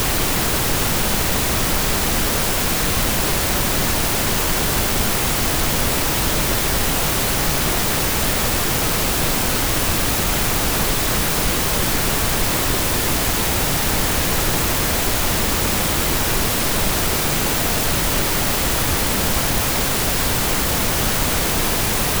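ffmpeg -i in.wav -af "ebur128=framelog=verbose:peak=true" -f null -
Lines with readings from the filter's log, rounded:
Integrated loudness:
  I:         -17.7 LUFS
  Threshold: -27.7 LUFS
Loudness range:
  LRA:         0.1 LU
  Threshold: -37.7 LUFS
  LRA low:   -17.7 LUFS
  LRA high:  -17.6 LUFS
True peak:
  Peak:       -5.2 dBFS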